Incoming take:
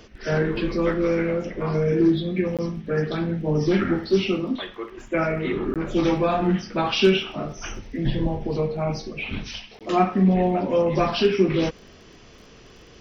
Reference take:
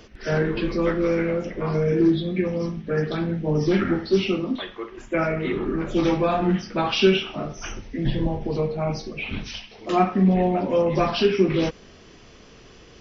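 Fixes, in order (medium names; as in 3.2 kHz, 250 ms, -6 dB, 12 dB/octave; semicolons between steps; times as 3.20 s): clip repair -8 dBFS; de-click; interpolate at 2.57/5.74/9.79 s, 17 ms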